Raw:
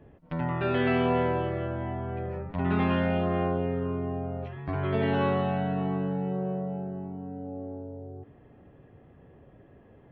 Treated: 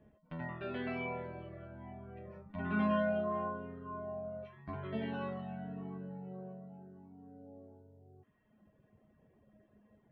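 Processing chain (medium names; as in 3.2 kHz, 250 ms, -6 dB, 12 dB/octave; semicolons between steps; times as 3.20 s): reverb removal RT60 1.5 s; feedback comb 210 Hz, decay 0.3 s, harmonics odd, mix 90%; trim +5.5 dB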